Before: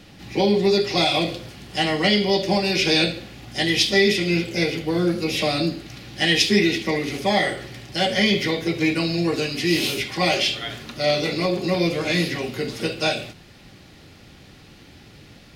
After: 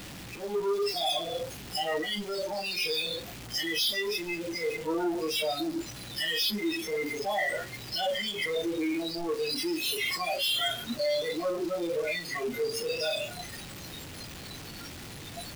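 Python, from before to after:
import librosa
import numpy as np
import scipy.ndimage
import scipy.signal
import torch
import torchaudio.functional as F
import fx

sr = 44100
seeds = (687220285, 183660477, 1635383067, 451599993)

y = np.sign(x) * np.sqrt(np.mean(np.square(x)))
y = fx.noise_reduce_blind(y, sr, reduce_db=19)
y = F.gain(torch.from_numpy(y), -1.5).numpy()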